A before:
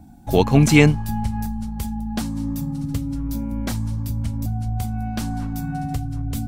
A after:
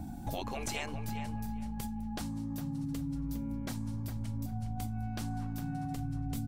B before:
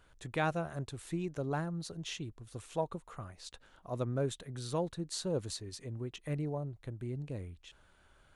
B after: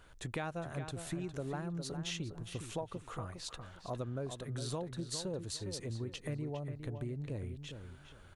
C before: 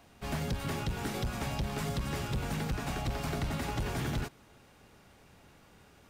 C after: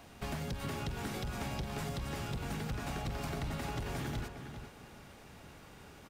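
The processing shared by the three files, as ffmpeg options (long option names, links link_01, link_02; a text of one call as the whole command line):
ffmpeg -i in.wav -filter_complex "[0:a]afftfilt=real='re*lt(hypot(re,im),0.631)':imag='im*lt(hypot(re,im),0.631)':win_size=1024:overlap=0.75,acompressor=threshold=-41dB:ratio=6,asplit=2[link_01][link_02];[link_02]adelay=408,lowpass=frequency=3200:poles=1,volume=-8dB,asplit=2[link_03][link_04];[link_04]adelay=408,lowpass=frequency=3200:poles=1,volume=0.24,asplit=2[link_05][link_06];[link_06]adelay=408,lowpass=frequency=3200:poles=1,volume=0.24[link_07];[link_01][link_03][link_05][link_07]amix=inputs=4:normalize=0,volume=4.5dB" out.wav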